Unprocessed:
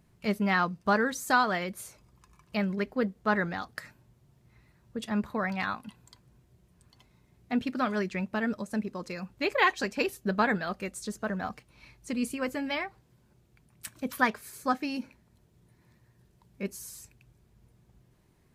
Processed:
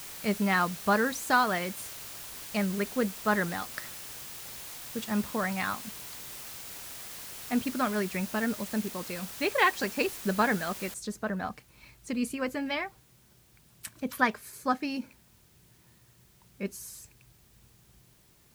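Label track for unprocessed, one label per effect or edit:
10.940000	10.940000	noise floor change −43 dB −64 dB

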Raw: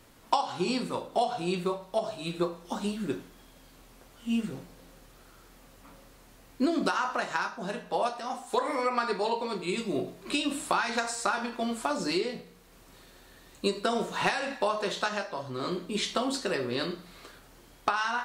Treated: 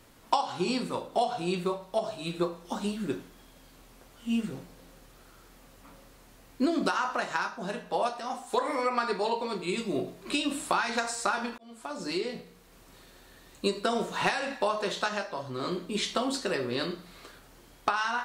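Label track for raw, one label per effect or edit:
11.580000	12.380000	fade in

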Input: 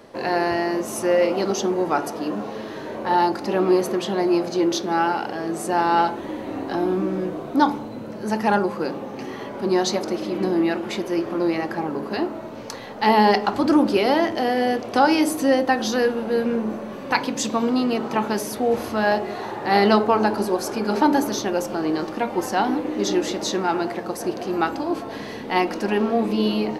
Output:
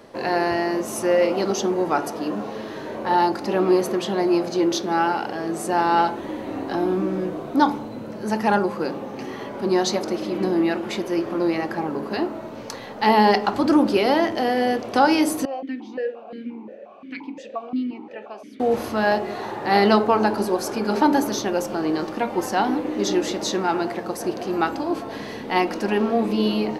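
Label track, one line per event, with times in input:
15.450000	18.600000	formant filter that steps through the vowels 5.7 Hz

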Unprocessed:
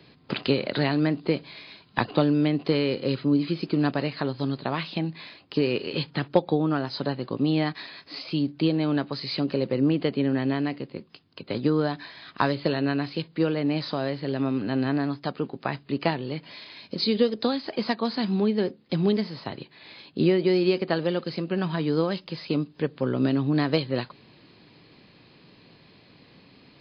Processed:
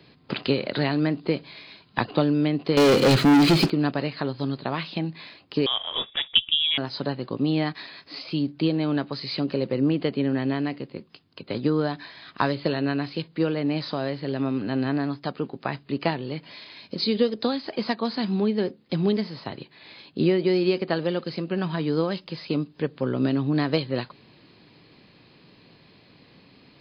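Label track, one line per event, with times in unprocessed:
2.770000	3.700000	leveller curve on the samples passes 5
5.660000	6.780000	voice inversion scrambler carrier 3,600 Hz

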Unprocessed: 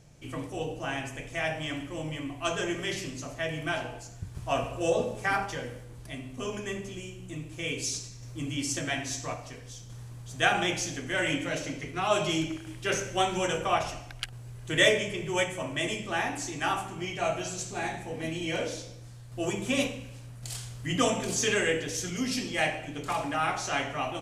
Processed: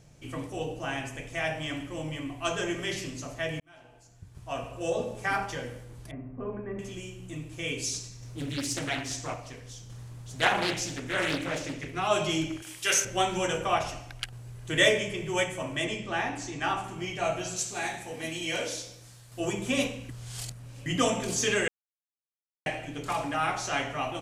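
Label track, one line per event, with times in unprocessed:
3.600000	5.530000	fade in
6.110000	6.790000	Bessel low-pass filter 1,100 Hz, order 8
8.240000	11.950000	highs frequency-modulated by the lows depth 0.66 ms
12.620000	13.050000	spectral tilt +4 dB per octave
15.840000	16.840000	high-frequency loss of the air 60 metres
17.560000	19.400000	spectral tilt +2 dB per octave
20.090000	20.860000	reverse
21.680000	22.660000	silence

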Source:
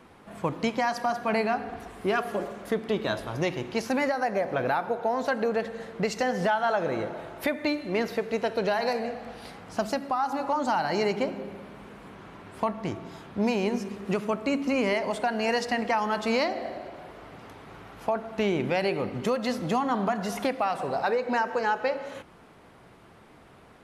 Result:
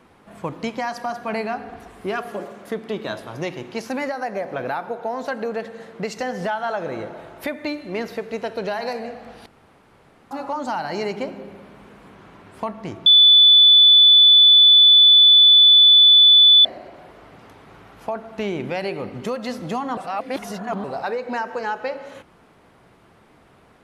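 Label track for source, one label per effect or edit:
2.280000	6.180000	high-pass filter 110 Hz
9.460000	10.310000	fill with room tone
13.060000	16.650000	beep over 3,480 Hz −7.5 dBFS
19.970000	20.840000	reverse

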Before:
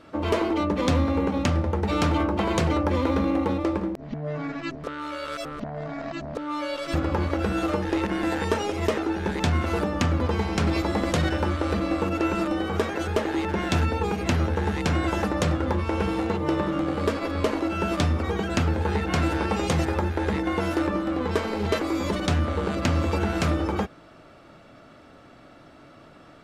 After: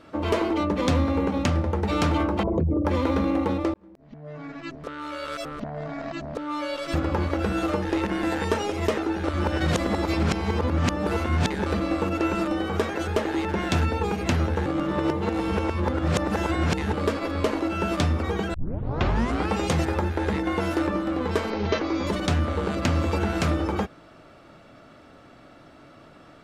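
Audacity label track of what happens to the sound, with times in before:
2.430000	2.850000	spectral envelope exaggerated exponent 3
3.740000	5.250000	fade in
9.240000	11.660000	reverse
14.660000	16.930000	reverse
18.540000	18.540000	tape start 0.97 s
21.500000	22.070000	Butterworth low-pass 6,500 Hz 96 dB per octave

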